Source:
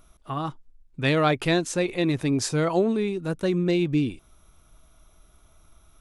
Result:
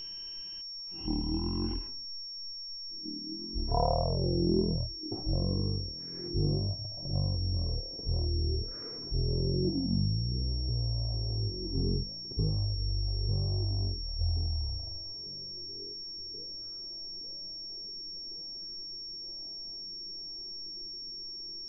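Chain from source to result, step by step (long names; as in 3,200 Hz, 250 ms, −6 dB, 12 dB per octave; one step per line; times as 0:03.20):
downward compressor, threshold −29 dBFS, peak gain reduction 11.5 dB
echo through a band-pass that steps 547 ms, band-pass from 990 Hz, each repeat 0.7 octaves, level −8 dB
change of speed 0.277×
low-pass filter sweep 3,500 Hz → 350 Hz, 0:02.45–0:04.57
steady tone 5,500 Hz −39 dBFS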